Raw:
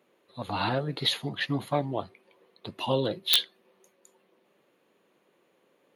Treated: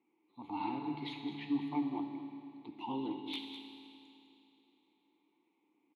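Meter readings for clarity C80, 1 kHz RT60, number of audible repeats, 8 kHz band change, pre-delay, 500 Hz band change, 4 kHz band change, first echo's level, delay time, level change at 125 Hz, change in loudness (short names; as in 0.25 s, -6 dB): 4.5 dB, 2.9 s, 1, under -30 dB, 7 ms, -17.0 dB, -19.0 dB, -12.0 dB, 0.205 s, -17.0 dB, -11.5 dB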